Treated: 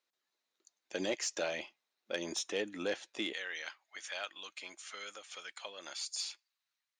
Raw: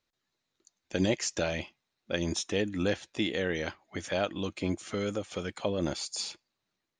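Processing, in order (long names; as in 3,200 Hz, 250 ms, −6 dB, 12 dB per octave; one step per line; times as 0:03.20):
high-pass filter 390 Hz 12 dB per octave, from 0:03.33 1,300 Hz
soft clipping −20 dBFS, distortion −21 dB
level −3 dB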